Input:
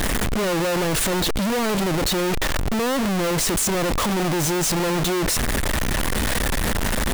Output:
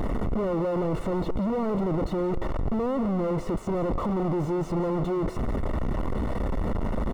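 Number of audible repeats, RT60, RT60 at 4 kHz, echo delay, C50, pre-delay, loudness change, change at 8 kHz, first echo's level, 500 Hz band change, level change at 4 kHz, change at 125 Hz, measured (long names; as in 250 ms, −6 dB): 1, no reverb audible, no reverb audible, 176 ms, no reverb audible, no reverb audible, −6.5 dB, below −30 dB, −16.5 dB, −4.0 dB, −24.5 dB, −3.5 dB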